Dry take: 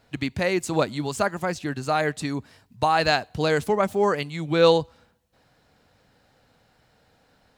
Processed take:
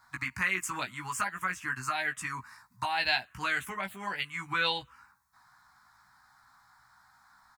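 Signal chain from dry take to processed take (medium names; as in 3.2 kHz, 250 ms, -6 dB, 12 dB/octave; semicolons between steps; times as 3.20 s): resonant low shelf 710 Hz -13.5 dB, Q 3; in parallel at +1 dB: compression, threshold -32 dBFS, peak gain reduction 16.5 dB; on the sum: touch-sensitive phaser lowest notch 480 Hz, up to 1.2 kHz, full sweep at -16 dBFS; doubling 16 ms -4 dB; trim -5 dB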